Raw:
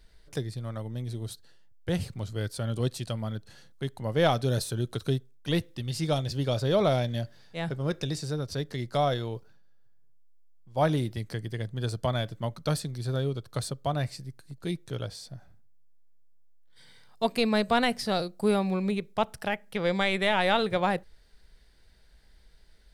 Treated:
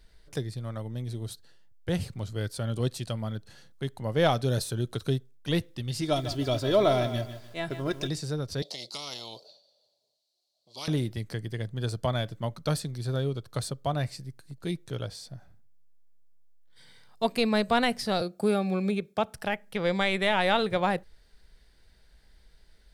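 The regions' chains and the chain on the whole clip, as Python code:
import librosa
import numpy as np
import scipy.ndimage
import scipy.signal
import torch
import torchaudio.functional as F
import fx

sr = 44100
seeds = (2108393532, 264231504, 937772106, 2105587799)

y = fx.chain(x, sr, fx.comb(ms=3.0, depth=0.56),
    fx.echo_crushed(ms=151, feedback_pct=35, bits=8, wet_db=-10.5), at=(6.01, 8.09))
y = fx.chain(y, sr, fx.double_bandpass(hz=1600.0, octaves=2.8),
    fx.tilt_eq(slope=2.5),
    fx.spectral_comp(ratio=10.0), at=(8.62, 10.88))
y = fx.chain(y, sr, fx.notch_comb(f0_hz=990.0),
    fx.band_squash(depth_pct=40), at=(18.21, 19.34))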